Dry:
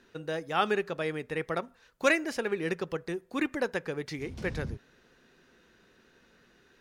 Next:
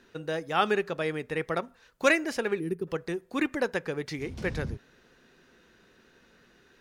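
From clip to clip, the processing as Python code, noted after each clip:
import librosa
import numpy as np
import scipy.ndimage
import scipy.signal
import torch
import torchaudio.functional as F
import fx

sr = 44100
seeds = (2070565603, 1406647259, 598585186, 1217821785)

y = fx.spec_box(x, sr, start_s=2.6, length_s=0.27, low_hz=460.0, high_hz=8700.0, gain_db=-18)
y = y * librosa.db_to_amplitude(2.0)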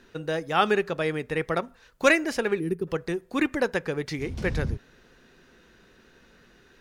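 y = fx.low_shelf(x, sr, hz=69.0, db=8.5)
y = y * librosa.db_to_amplitude(3.0)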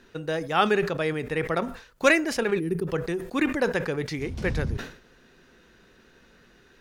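y = fx.sustainer(x, sr, db_per_s=110.0)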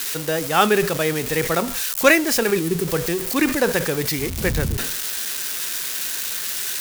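y = x + 0.5 * 10.0 ** (-20.0 / 20.0) * np.diff(np.sign(x), prepend=np.sign(x[:1]))
y = y * librosa.db_to_amplitude(5.0)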